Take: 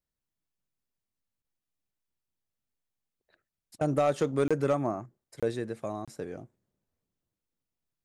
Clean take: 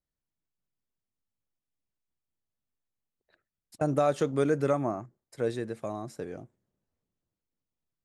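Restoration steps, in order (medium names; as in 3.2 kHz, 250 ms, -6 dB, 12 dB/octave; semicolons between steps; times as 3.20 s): clip repair -18 dBFS; interpolate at 1.42/4.48/5.40/6.05 s, 26 ms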